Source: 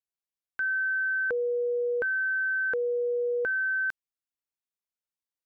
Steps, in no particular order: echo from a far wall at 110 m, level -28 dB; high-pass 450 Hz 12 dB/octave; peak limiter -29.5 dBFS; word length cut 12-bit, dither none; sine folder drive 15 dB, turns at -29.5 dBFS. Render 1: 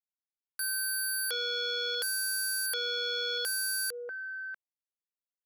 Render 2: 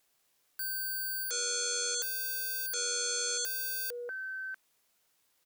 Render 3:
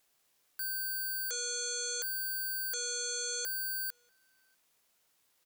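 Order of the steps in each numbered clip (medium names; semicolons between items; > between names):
word length cut > echo from a far wall > peak limiter > sine folder > high-pass; echo from a far wall > sine folder > peak limiter > high-pass > word length cut; sine folder > high-pass > peak limiter > word length cut > echo from a far wall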